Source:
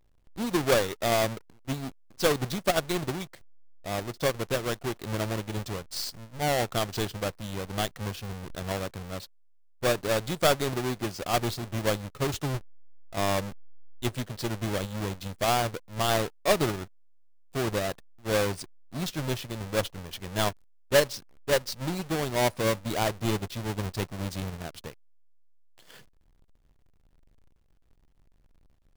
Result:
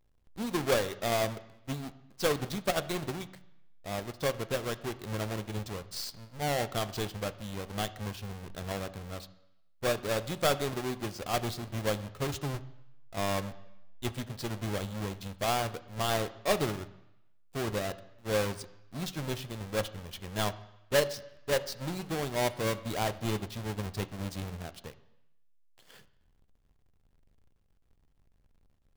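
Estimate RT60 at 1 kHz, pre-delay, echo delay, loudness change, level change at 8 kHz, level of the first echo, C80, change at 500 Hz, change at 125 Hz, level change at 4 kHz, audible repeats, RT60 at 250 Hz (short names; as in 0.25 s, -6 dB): 0.90 s, 3 ms, none, -4.0 dB, -4.5 dB, none, 18.5 dB, -4.0 dB, -3.5 dB, -4.0 dB, none, 0.80 s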